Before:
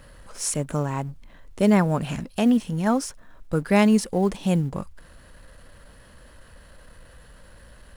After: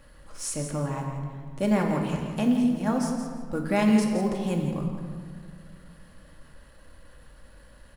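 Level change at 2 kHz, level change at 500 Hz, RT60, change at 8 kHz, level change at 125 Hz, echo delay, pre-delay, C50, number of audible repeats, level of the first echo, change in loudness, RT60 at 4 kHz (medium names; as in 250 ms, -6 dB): -4.0 dB, -4.0 dB, 1.9 s, -5.0 dB, -3.5 dB, 169 ms, 3 ms, 3.5 dB, 1, -9.0 dB, -4.0 dB, 1.2 s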